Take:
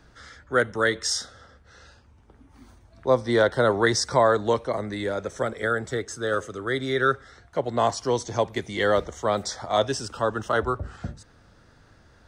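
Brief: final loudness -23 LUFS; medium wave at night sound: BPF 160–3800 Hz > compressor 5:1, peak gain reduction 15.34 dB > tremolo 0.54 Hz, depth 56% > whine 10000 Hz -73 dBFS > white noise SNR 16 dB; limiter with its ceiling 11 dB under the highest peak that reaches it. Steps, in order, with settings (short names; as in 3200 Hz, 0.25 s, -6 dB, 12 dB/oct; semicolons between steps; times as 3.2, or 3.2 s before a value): limiter -18 dBFS; BPF 160–3800 Hz; compressor 5:1, threshold -40 dBFS; tremolo 0.54 Hz, depth 56%; whine 10000 Hz -73 dBFS; white noise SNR 16 dB; gain +23 dB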